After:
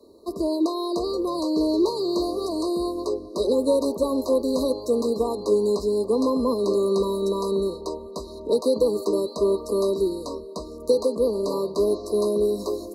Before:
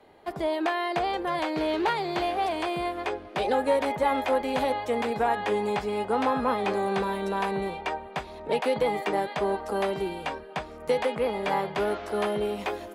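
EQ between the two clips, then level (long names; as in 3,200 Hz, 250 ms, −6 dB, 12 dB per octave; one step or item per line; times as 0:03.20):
high-pass filter 42 Hz
linear-phase brick-wall band-stop 1,200–3,800 Hz
phaser with its sweep stopped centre 330 Hz, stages 4
+8.5 dB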